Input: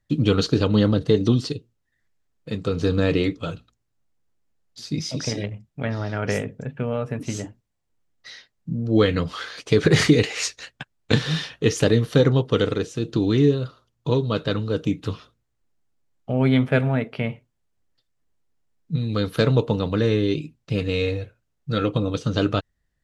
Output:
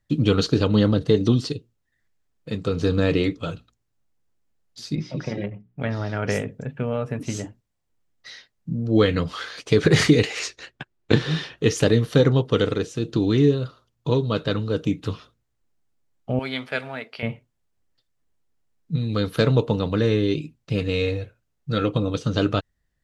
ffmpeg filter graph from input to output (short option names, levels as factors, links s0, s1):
-filter_complex "[0:a]asettb=1/sr,asplit=3[s0][s1][s2];[s0]atrim=end=4.954[s3];[s1]atrim=start=4.95:end=5.8,asetpts=PTS-STARTPTS,afade=t=in:d=0.004:c=qsin,afade=t=out:st=0.846:d=0.004:c=qsin,lowpass=2100,bandreject=f=60:t=h:w=6,bandreject=f=120:t=h:w=6,bandreject=f=180:t=h:w=6,bandreject=f=240:t=h:w=6,bandreject=f=300:t=h:w=6,bandreject=f=360:t=h:w=6,bandreject=f=420:t=h:w=6,aecho=1:1:5.5:0.43,atrim=end_sample=37485[s4];[s2]atrim=start=5.796[s5];[s3][s4]acrossfade=d=0.004:c1=hsin:c2=qsin[s6];[s6][s5]acrossfade=d=0.004:c1=qsin:c2=hsin,asettb=1/sr,asplit=3[s7][s8][s9];[s7]atrim=end=10.394[s10];[s8]atrim=start=10.39:end=11.58,asetpts=PTS-STARTPTS,afade=t=in:d=0.004:c=qsin,afade=t=out:st=1.186:d=0.004:c=qsin,lowpass=f=3700:p=1,equalizer=f=360:t=o:w=0.36:g=9.5[s11];[s9]atrim=start=11.576[s12];[s10][s11]acrossfade=d=0.004:c1=hsin:c2=qsin[s13];[s13][s12]acrossfade=d=0.004:c1=qsin:c2=hsin,asettb=1/sr,asplit=3[s14][s15][s16];[s14]atrim=end=16.394[s17];[s15]atrim=start=16.39:end=17.23,asetpts=PTS-STARTPTS,afade=t=in:d=0.004:c=qsin,afade=t=out:st=0.836:d=0.004:c=qsin,highpass=f=1300:p=1,equalizer=f=4600:w=3.4:g=9.5[s18];[s16]atrim=start=17.226[s19];[s17][s18]acrossfade=d=0.004:c1=hsin:c2=qsin[s20];[s20][s19]acrossfade=d=0.004:c1=qsin:c2=hsin"